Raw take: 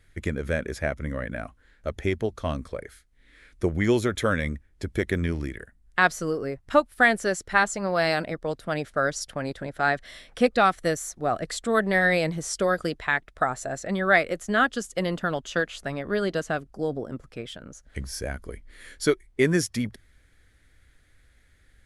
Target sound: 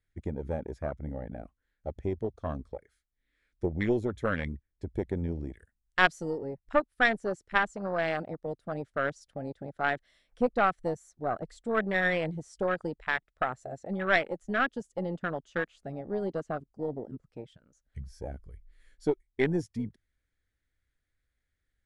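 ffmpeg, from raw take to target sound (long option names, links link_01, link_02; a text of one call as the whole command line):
ffmpeg -i in.wav -filter_complex "[0:a]lowpass=frequency=10000:width=0.5412,lowpass=frequency=10000:width=1.3066,afwtdn=0.0447,asettb=1/sr,asplit=3[link_01][link_02][link_03];[link_01]atrim=end=5.534[link_04];[link_02]atrim=start=5.53:end=6.38,asetpts=PTS-STARTPTS,afade=type=in:duration=0.004:curve=qsin,afade=type=out:start_time=0.846:duration=0.004:curve=qsin,highshelf=frequency=2900:gain=10.5[link_05];[link_03]atrim=start=6.376[link_06];[link_04][link_05]acrossfade=duration=0.004:curve1=hsin:curve2=qsin[link_07];[link_07][link_06]acrossfade=duration=0.004:curve1=qsin:curve2=hsin,aeval=exprs='0.708*(cos(1*acos(clip(val(0)/0.708,-1,1)))-cos(1*PI/2))+0.282*(cos(2*acos(clip(val(0)/0.708,-1,1)))-cos(2*PI/2))':channel_layout=same,volume=-5.5dB" out.wav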